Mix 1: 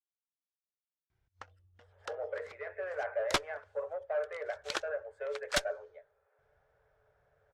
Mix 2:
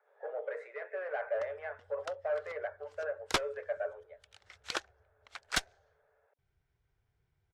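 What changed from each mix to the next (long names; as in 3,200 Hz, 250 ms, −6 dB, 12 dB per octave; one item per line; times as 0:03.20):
speech: entry −1.85 s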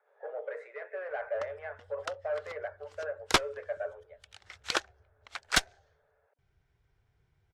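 background +6.0 dB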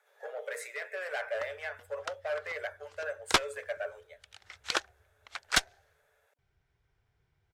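speech: remove low-pass filter 1,300 Hz 12 dB per octave
master: add low-shelf EQ 500 Hz −3.5 dB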